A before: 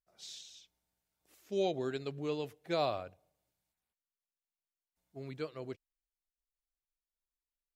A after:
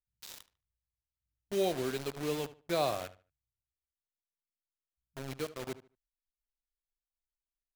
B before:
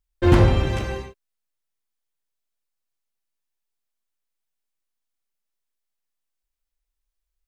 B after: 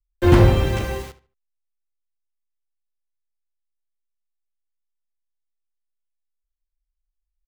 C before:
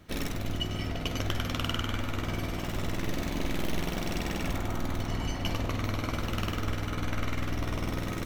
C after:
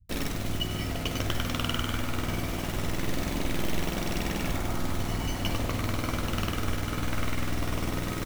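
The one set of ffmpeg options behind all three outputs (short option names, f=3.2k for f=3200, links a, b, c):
-filter_complex "[0:a]acrossover=split=110[a][b];[b]acrusher=bits=6:mix=0:aa=0.000001[c];[a][c]amix=inputs=2:normalize=0,asplit=2[d][e];[e]adelay=74,lowpass=f=4k:p=1,volume=-15.5dB,asplit=2[f][g];[g]adelay=74,lowpass=f=4k:p=1,volume=0.25,asplit=2[h][i];[i]adelay=74,lowpass=f=4k:p=1,volume=0.25[j];[d][f][h][j]amix=inputs=4:normalize=0,volume=1.5dB"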